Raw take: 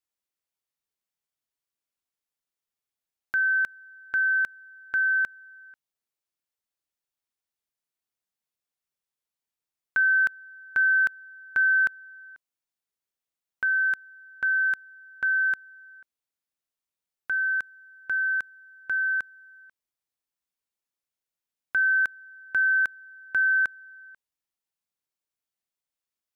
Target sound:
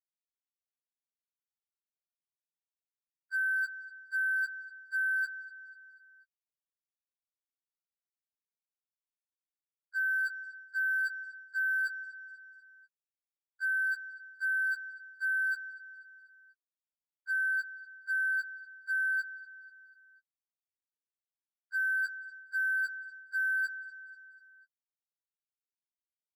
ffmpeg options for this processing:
ffmpeg -i in.wav -filter_complex "[0:a]afftfilt=real='re*gte(hypot(re,im),0.282)':imag='im*gte(hypot(re,im),0.282)':win_size=1024:overlap=0.75,adynamicequalizer=threshold=0.0158:dfrequency=1500:dqfactor=1.9:tfrequency=1500:tqfactor=1.9:attack=5:release=100:ratio=0.375:range=2.5:mode=cutabove:tftype=bell,asplit=2[link_01][link_02];[link_02]aeval=exprs='0.0335*(abs(mod(val(0)/0.0335+3,4)-2)-1)':channel_layout=same,volume=-8dB[link_03];[link_01][link_03]amix=inputs=2:normalize=0,aecho=1:1:245|490|735|980:0.075|0.0405|0.0219|0.0118,areverse,acompressor=threshold=-32dB:ratio=16,areverse,aresample=16000,aresample=44100,highshelf=frequency=2200:gain=11,asoftclip=type=hard:threshold=-28dB,afftfilt=real='re*2*eq(mod(b,4),0)':imag='im*2*eq(mod(b,4),0)':win_size=2048:overlap=0.75" out.wav

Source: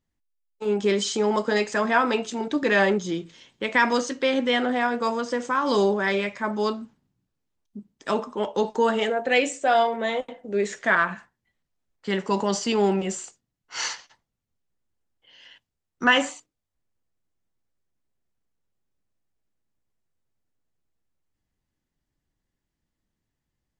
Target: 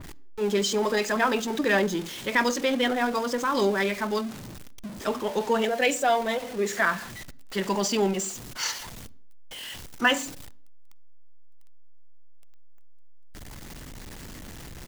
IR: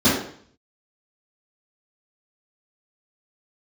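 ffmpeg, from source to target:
-filter_complex "[0:a]aeval=exprs='val(0)+0.5*0.0282*sgn(val(0))':channel_layout=same,atempo=1.6,asplit=2[link_01][link_02];[1:a]atrim=start_sample=2205,adelay=38[link_03];[link_02][link_03]afir=irnorm=-1:irlink=0,volume=-42.5dB[link_04];[link_01][link_04]amix=inputs=2:normalize=0,adynamicequalizer=threshold=0.0126:dfrequency=2700:dqfactor=0.7:tfrequency=2700:tqfactor=0.7:attack=5:release=100:ratio=0.375:range=1.5:mode=boostabove:tftype=highshelf,volume=-3dB"

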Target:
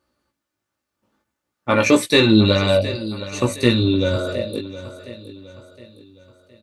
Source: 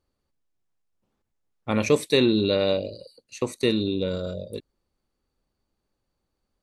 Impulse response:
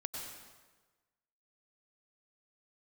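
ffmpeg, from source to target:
-filter_complex "[0:a]highpass=91,equalizer=frequency=1400:width_type=o:width=0.86:gain=6,aecho=1:1:3.4:0.39,asplit=3[link_01][link_02][link_03];[link_01]afade=type=out:start_time=1.98:duration=0.02[link_04];[link_02]asubboost=boost=6:cutoff=130,afade=type=in:start_time=1.98:duration=0.02,afade=type=out:start_time=4.15:duration=0.02[link_05];[link_03]afade=type=in:start_time=4.15:duration=0.02[link_06];[link_04][link_05][link_06]amix=inputs=3:normalize=0,acontrast=38,flanger=delay=16.5:depth=3.1:speed=0.56,aecho=1:1:715|1430|2145|2860:0.188|0.0791|0.0332|0.014,volume=5dB"

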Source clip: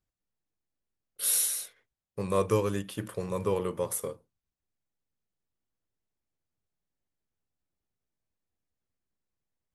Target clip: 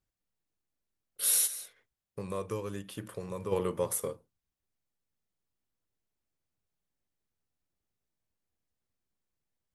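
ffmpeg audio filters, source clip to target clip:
ffmpeg -i in.wav -filter_complex "[0:a]asplit=3[link_01][link_02][link_03];[link_01]afade=type=out:start_time=1.46:duration=0.02[link_04];[link_02]acompressor=threshold=-40dB:ratio=2,afade=type=in:start_time=1.46:duration=0.02,afade=type=out:start_time=3.51:duration=0.02[link_05];[link_03]afade=type=in:start_time=3.51:duration=0.02[link_06];[link_04][link_05][link_06]amix=inputs=3:normalize=0" out.wav

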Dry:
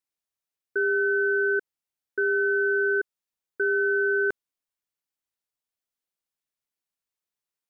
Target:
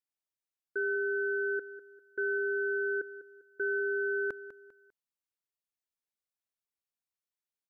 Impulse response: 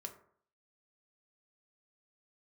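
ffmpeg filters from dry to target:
-af "aecho=1:1:199|398|597:0.2|0.0698|0.0244,volume=-7.5dB"

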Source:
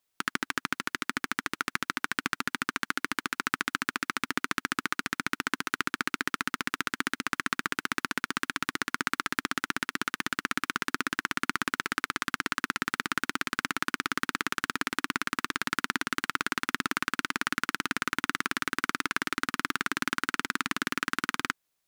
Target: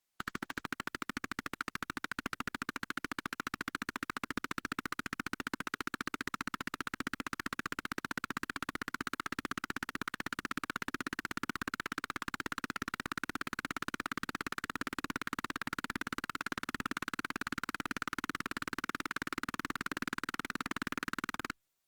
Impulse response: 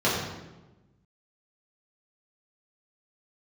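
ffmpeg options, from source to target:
-af "volume=21.5dB,asoftclip=hard,volume=-21.5dB,volume=-3.5dB" -ar 48000 -c:a libopus -b:a 16k

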